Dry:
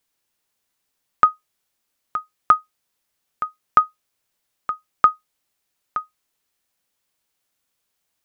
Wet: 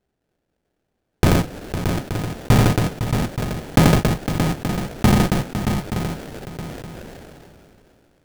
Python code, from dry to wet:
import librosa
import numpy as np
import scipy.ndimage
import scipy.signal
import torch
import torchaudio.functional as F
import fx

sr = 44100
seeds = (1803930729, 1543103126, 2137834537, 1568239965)

y = fx.sample_hold(x, sr, seeds[0], rate_hz=1100.0, jitter_pct=20)
y = fx.echo_multitap(y, sr, ms=(85, 507, 625, 876), db=(-17.0, -17.0, -6.5, -11.0))
y = fx.sustainer(y, sr, db_per_s=21.0)